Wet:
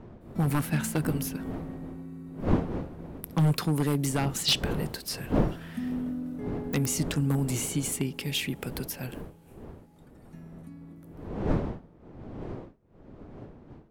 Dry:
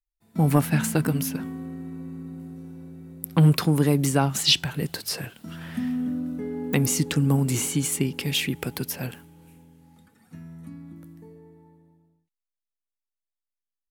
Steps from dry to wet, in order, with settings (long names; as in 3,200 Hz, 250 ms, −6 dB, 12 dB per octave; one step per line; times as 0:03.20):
wavefolder on the positive side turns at −12.5 dBFS
wind on the microphone 330 Hz −31 dBFS
level −5 dB